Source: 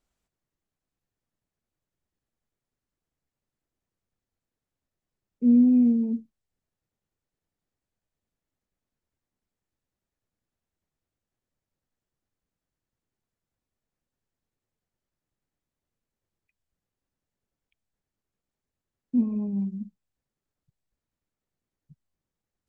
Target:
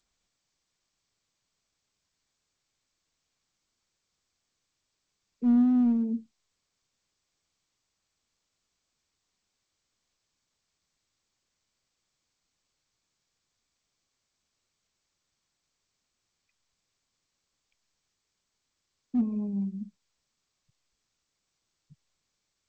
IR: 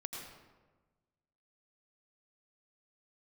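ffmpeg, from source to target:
-filter_complex "[0:a]acrossover=split=200|250[a][b][c];[c]asoftclip=type=hard:threshold=-32dB[d];[a][b][d]amix=inputs=3:normalize=0,volume=-2.5dB" -ar 16000 -c:a g722

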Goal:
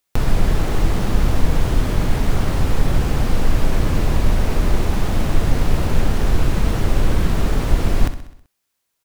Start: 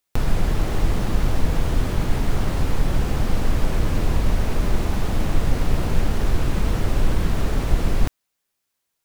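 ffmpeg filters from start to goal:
-af "aecho=1:1:64|128|192|256|320|384:0.251|0.138|0.076|0.0418|0.023|0.0126,volume=3dB"

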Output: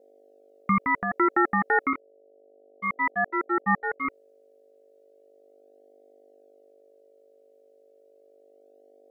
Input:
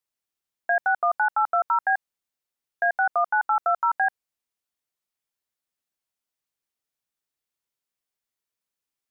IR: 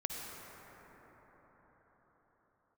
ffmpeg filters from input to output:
-filter_complex "[0:a]asettb=1/sr,asplit=3[a][b][c];[a]atrim=end=1.934[d];[b]atrim=start=1.93:end=4.05,asetpts=PTS-STARTPTS,afade=t=in:d=0.004:c=qsin,afade=t=out:st=2.116:d=0.004:c=qsin,agate=range=-33dB:threshold=-17dB:ratio=3:detection=peak[e];[c]atrim=start=4.046[f];[d][e]acrossfade=d=0.004:c1=hsin:c2=qsin[g];[g][f]acrossfade=d=0.004:c1=qsin:c2=hsin,aeval=exprs='val(0)+0.00112*(sin(2*PI*50*n/s)+sin(2*PI*2*50*n/s)/2+sin(2*PI*3*50*n/s)/3+sin(2*PI*4*50*n/s)/4+sin(2*PI*5*50*n/s)/5)':c=same,flanger=delay=0.7:depth=1.8:regen=16:speed=0.33:shape=sinusoidal,aeval=exprs='val(0)*sin(2*PI*500*n/s)':c=same,volume=6.5dB"

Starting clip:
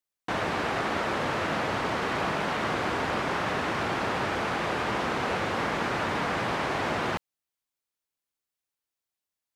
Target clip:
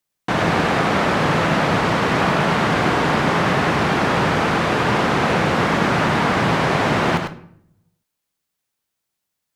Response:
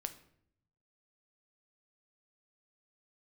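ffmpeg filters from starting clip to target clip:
-filter_complex "[0:a]equalizer=f=160:t=o:w=0.98:g=7,asplit=2[a][b];[1:a]atrim=start_sample=2205,adelay=100[c];[b][c]afir=irnorm=-1:irlink=0,volume=-3.5dB[d];[a][d]amix=inputs=2:normalize=0,volume=8.5dB"

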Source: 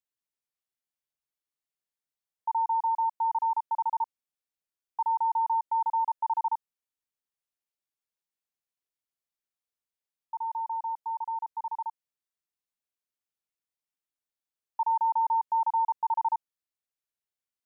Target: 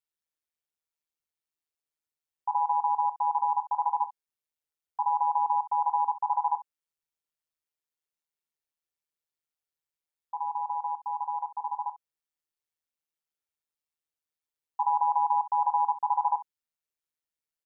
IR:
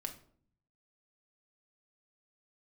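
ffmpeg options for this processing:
-af "aecho=1:1:2.2:0.49,aeval=exprs='val(0)*sin(2*PI*78*n/s)':c=same,aecho=1:1:25|64:0.237|0.188"

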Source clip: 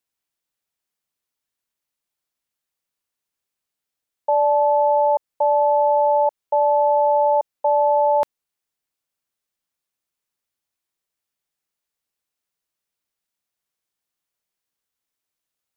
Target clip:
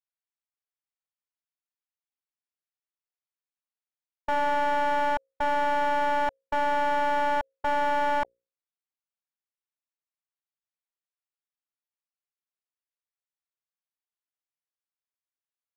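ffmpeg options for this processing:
-filter_complex "[0:a]bandreject=f=60:t=h:w=6,bandreject=f=120:t=h:w=6,bandreject=f=180:t=h:w=6,bandreject=f=240:t=h:w=6,bandreject=f=300:t=h:w=6,bandreject=f=360:t=h:w=6,bandreject=f=420:t=h:w=6,bandreject=f=480:t=h:w=6,bandreject=f=540:t=h:w=6,afwtdn=0.0501,equalizer=f=310:w=0.51:g=-10,asplit=2[a][b];[b]highpass=f=720:p=1,volume=16dB,asoftclip=type=tanh:threshold=-15dB[c];[a][c]amix=inputs=2:normalize=0,lowpass=f=1k:p=1,volume=-6dB,aeval=exprs='clip(val(0),-1,0.0266)':c=same"

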